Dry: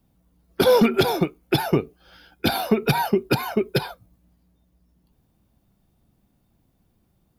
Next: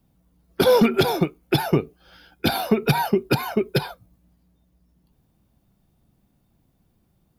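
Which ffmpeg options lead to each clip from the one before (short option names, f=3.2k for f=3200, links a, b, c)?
-af "equalizer=f=150:t=o:w=0.43:g=2.5"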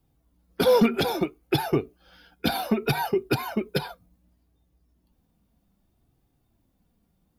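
-af "flanger=delay=2.4:depth=1.9:regen=-40:speed=0.64:shape=sinusoidal"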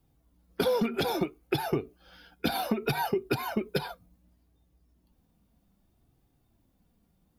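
-af "acompressor=threshold=-24dB:ratio=6"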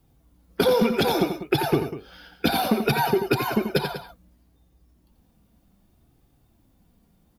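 -af "aecho=1:1:87|195:0.398|0.224,volume=6.5dB"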